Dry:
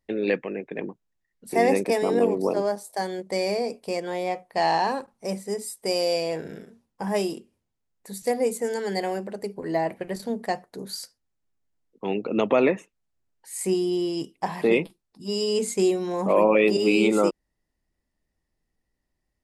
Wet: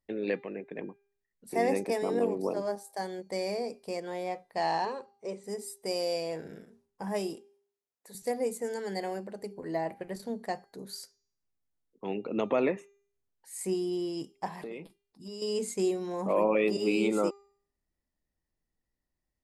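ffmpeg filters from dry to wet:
ffmpeg -i in.wav -filter_complex "[0:a]asettb=1/sr,asplit=3[link_01][link_02][link_03];[link_01]atrim=end=4.854[link_04];[link_02]atrim=start=4.85:end=5.44,asetpts=PTS-STARTPTS,afade=type=in:duration=0.004:curve=qsin,afade=type=out:start_time=0.586:duration=0.004:curve=qsin,highpass=130,equalizer=frequency=180:width_type=q:width=4:gain=-8,equalizer=frequency=280:width_type=q:width=4:gain=-9,equalizer=frequency=410:width_type=q:width=4:gain=8,equalizer=frequency=740:width_type=q:width=4:gain=-9,equalizer=frequency=1700:width_type=q:width=4:gain=-6,equalizer=frequency=5300:width_type=q:width=4:gain=-10,lowpass=frequency=6900:width=0.5412,lowpass=frequency=6900:width=1.3066[link_05];[link_03]atrim=start=5.436[link_06];[link_04][link_05]acrossfade=duration=0.004:curve1=hsin:curve2=qsin[link_07];[link_07][link_06]acrossfade=duration=0.004:curve1=qsin:curve2=hsin,asettb=1/sr,asplit=3[link_08][link_09][link_10];[link_08]atrim=end=7.354[link_11];[link_09]atrim=start=7.35:end=8.15,asetpts=PTS-STARTPTS,afade=type=in:duration=0.004:curve=qsin,afade=type=out:start_time=0.796:duration=0.004:curve=qsin,highpass=340[link_12];[link_10]atrim=start=8.146[link_13];[link_11][link_12]acrossfade=duration=0.004:curve1=hsin:curve2=qsin[link_14];[link_14][link_13]acrossfade=duration=0.004:curve1=qsin:curve2=hsin,asettb=1/sr,asplit=3[link_15][link_16][link_17];[link_15]atrim=end=14.484[link_18];[link_16]atrim=start=14.48:end=15.42,asetpts=PTS-STARTPTS,afade=type=in:duration=0.004:curve=qsin,afade=type=out:start_time=0.936:duration=0.004:curve=qsin,acompressor=threshold=-31dB:ratio=5:attack=3.2:release=140:knee=1:detection=peak[link_19];[link_17]atrim=start=15.416[link_20];[link_18][link_19]acrossfade=duration=0.004:curve1=hsin:curve2=qsin[link_21];[link_21][link_20]acrossfade=duration=0.004:curve1=qsin:curve2=hsin,equalizer=frequency=2900:width=1.5:gain=-2.5,bandreject=frequency=400.7:width_type=h:width=4,bandreject=frequency=801.4:width_type=h:width=4,bandreject=frequency=1202.1:width_type=h:width=4,bandreject=frequency=1602.8:width_type=h:width=4,bandreject=frequency=2003.5:width_type=h:width=4,bandreject=frequency=2404.2:width_type=h:width=4,bandreject=frequency=2804.9:width_type=h:width=4,bandreject=frequency=3205.6:width_type=h:width=4,bandreject=frequency=3606.3:width_type=h:width=4,bandreject=frequency=4007:width_type=h:width=4,bandreject=frequency=4407.7:width_type=h:width=4,bandreject=frequency=4808.4:width_type=h:width=4,bandreject=frequency=5209.1:width_type=h:width=4,bandreject=frequency=5609.8:width_type=h:width=4,bandreject=frequency=6010.5:width_type=h:width=4,bandreject=frequency=6411.2:width_type=h:width=4,bandreject=frequency=6811.9:width_type=h:width=4,bandreject=frequency=7212.6:width_type=h:width=4,volume=-7dB" out.wav

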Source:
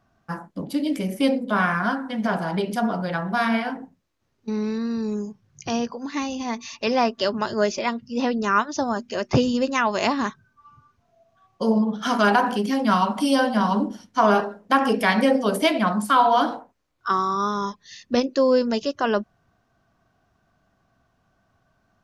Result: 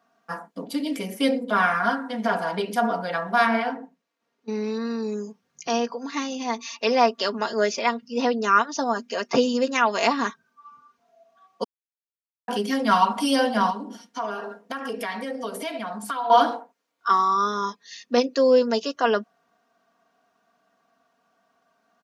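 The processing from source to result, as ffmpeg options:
ffmpeg -i in.wav -filter_complex "[0:a]asettb=1/sr,asplit=3[link_01][link_02][link_03];[link_01]atrim=end=3.464[link_04];[link_02]atrim=start=3.46:end=4.49,asetpts=PTS-STARTPTS,afade=type=in:duration=0.004:curve=qsin,afade=type=out:start_time=1.026:duration=0.004:curve=qsin,highshelf=frequency=5900:gain=-9[link_05];[link_03]atrim=start=4.486[link_06];[link_04][link_05]acrossfade=duration=0.004:curve1=hsin:curve2=qsin[link_07];[link_07][link_06]acrossfade=duration=0.004:curve1=qsin:curve2=hsin,asettb=1/sr,asplit=3[link_08][link_09][link_10];[link_08]atrim=end=13.704[link_11];[link_09]atrim=start=13.7:end=16.3,asetpts=PTS-STARTPTS,afade=type=in:duration=0.004:curve=qsin,afade=type=out:start_time=2.596:duration=0.004:curve=qsin,acompressor=threshold=-28dB:ratio=5:attack=3.2:release=140:knee=1:detection=peak[link_12];[link_10]atrim=start=16.296[link_13];[link_11][link_12]acrossfade=duration=0.004:curve1=hsin:curve2=qsin[link_14];[link_14][link_13]acrossfade=duration=0.004:curve1=qsin:curve2=hsin,asplit=3[link_15][link_16][link_17];[link_15]atrim=end=11.64,asetpts=PTS-STARTPTS,afade=type=out:start_time=11.636:duration=0.004:curve=hsin[link_18];[link_16]atrim=start=11.64:end=12.48,asetpts=PTS-STARTPTS,volume=0[link_19];[link_17]atrim=start=12.48,asetpts=PTS-STARTPTS,afade=type=in:duration=0.004:curve=hsin[link_20];[link_18][link_19][link_20]concat=n=3:v=0:a=1,highpass=330,aecho=1:1:4.3:0.61" out.wav

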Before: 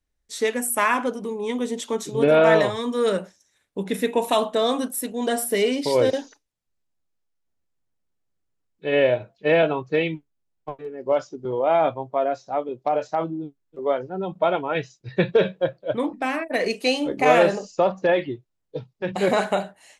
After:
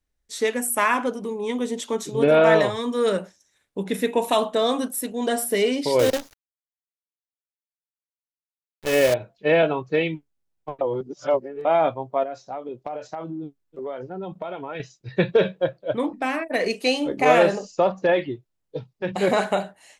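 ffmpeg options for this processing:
ffmpeg -i in.wav -filter_complex "[0:a]asettb=1/sr,asplit=3[link_01][link_02][link_03];[link_01]atrim=end=5.994[link_04];[link_02]atrim=start=5.99:end=9.14,asetpts=PTS-STARTPTS,afade=type=in:duration=0.004:curve=qsin,afade=type=out:start_time=3.146:duration=0.004:curve=qsin,acrusher=bits=5:dc=4:mix=0:aa=0.000001[link_05];[link_03]atrim=start=9.136[link_06];[link_04][link_05]acrossfade=duration=0.004:curve1=hsin:curve2=qsin[link_07];[link_07][link_06]acrossfade=duration=0.004:curve1=qsin:curve2=hsin,asettb=1/sr,asplit=3[link_08][link_09][link_10];[link_08]atrim=end=12.234[link_11];[link_09]atrim=start=12.23:end=14.8,asetpts=PTS-STARTPTS,afade=type=in:duration=0.004:curve=qsin,afade=type=out:start_time=2.566:duration=0.004:curve=qsin,acompressor=threshold=-28dB:ratio=6:attack=3.2:release=140:knee=1:detection=peak[link_12];[link_10]atrim=start=14.796[link_13];[link_11][link_12]acrossfade=duration=0.004:curve1=hsin:curve2=qsin[link_14];[link_14][link_13]acrossfade=duration=0.004:curve1=qsin:curve2=hsin,asplit=3[link_15][link_16][link_17];[link_15]atrim=end=10.812[link_18];[link_16]atrim=start=10.808:end=11.652,asetpts=PTS-STARTPTS,areverse[link_19];[link_17]atrim=start=11.648[link_20];[link_18][link_19]acrossfade=duration=0.004:curve1=hsin:curve2=hsin[link_21];[link_21][link_20]acrossfade=duration=0.004:curve1=hsin:curve2=hsin" out.wav

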